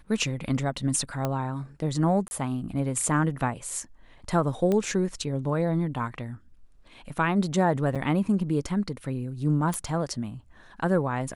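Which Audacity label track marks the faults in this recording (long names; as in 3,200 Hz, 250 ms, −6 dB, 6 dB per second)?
1.250000	1.250000	click −14 dBFS
2.280000	2.310000	drop-out 30 ms
4.720000	4.720000	click −15 dBFS
7.950000	7.960000	drop-out 6.3 ms
9.740000	9.740000	click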